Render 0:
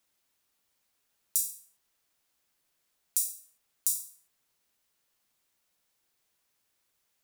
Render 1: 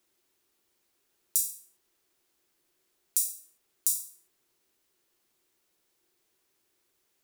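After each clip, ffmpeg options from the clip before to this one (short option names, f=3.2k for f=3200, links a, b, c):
-af "equalizer=f=360:w=3.1:g=14,volume=1.5dB"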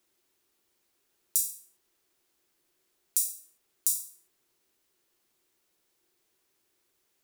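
-af anull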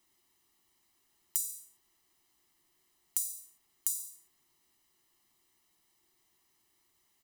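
-af "acompressor=threshold=-30dB:ratio=6,aecho=1:1:1:0.67"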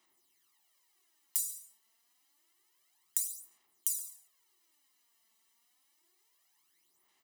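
-af "highpass=f=580:p=1,aphaser=in_gain=1:out_gain=1:delay=4.5:decay=0.63:speed=0.28:type=sinusoidal,volume=-2dB"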